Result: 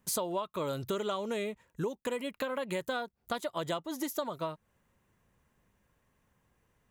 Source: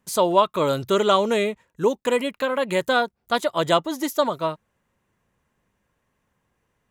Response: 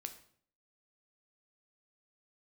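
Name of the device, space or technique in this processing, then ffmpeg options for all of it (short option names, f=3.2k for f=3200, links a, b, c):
ASMR close-microphone chain: -af "lowshelf=f=130:g=5,acompressor=threshold=-30dB:ratio=6,highshelf=f=12k:g=7,volume=-2dB"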